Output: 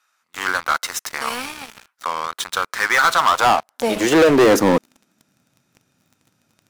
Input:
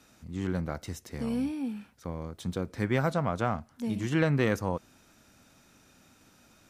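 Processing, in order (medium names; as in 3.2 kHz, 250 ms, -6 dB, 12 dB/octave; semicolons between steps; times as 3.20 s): high-pass sweep 1.2 kHz -> 120 Hz, 3.15–5.55 s; waveshaping leveller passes 5; trim +2.5 dB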